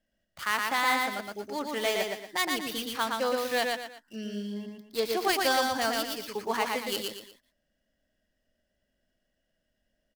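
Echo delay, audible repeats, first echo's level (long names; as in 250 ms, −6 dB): 117 ms, 3, −3.0 dB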